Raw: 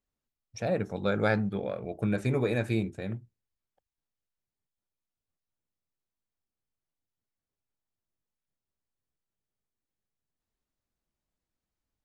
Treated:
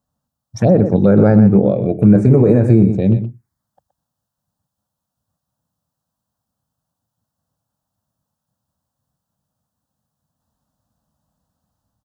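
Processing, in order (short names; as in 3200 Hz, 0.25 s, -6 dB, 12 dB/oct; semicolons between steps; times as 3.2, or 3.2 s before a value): rattling part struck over -30 dBFS, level -38 dBFS; HPF 110 Hz 12 dB/oct; low shelf 350 Hz +3.5 dB; AGC gain up to 3.5 dB; tilt shelf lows +9.5 dB; envelope phaser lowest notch 380 Hz, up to 3200 Hz, full sweep at -14.5 dBFS; echo 0.122 s -12 dB; maximiser +10 dB; mismatched tape noise reduction encoder only; gain -1 dB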